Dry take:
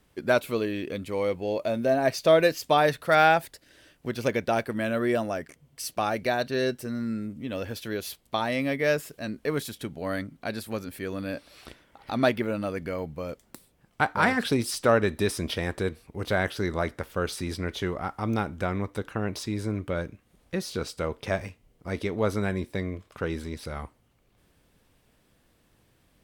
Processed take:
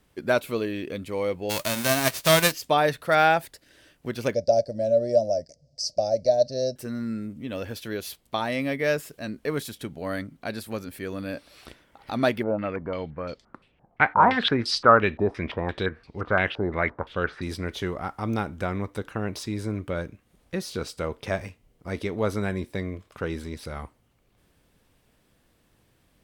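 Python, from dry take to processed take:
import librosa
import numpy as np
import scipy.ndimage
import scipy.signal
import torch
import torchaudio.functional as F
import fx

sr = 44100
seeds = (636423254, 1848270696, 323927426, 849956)

y = fx.envelope_flatten(x, sr, power=0.3, at=(1.49, 2.51), fade=0.02)
y = fx.curve_eq(y, sr, hz=(110.0, 410.0, 590.0, 1100.0, 1900.0, 3300.0, 5000.0, 7700.0, 13000.0), db=(0, -10, 13, -30, -21, -20, 13, -6, -29), at=(4.34, 6.76))
y = fx.filter_held_lowpass(y, sr, hz=5.8, low_hz=770.0, high_hz=4500.0, at=(12.42, 17.41), fade=0.02)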